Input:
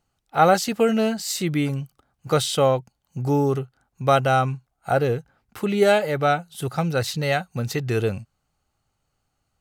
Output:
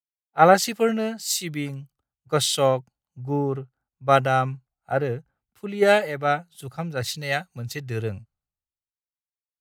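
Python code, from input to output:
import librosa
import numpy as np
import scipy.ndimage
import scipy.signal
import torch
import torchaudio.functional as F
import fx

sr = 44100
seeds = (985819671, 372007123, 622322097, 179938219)

y = fx.dynamic_eq(x, sr, hz=1900.0, q=3.8, threshold_db=-43.0, ratio=4.0, max_db=6)
y = fx.band_widen(y, sr, depth_pct=100)
y = y * 10.0 ** (-4.0 / 20.0)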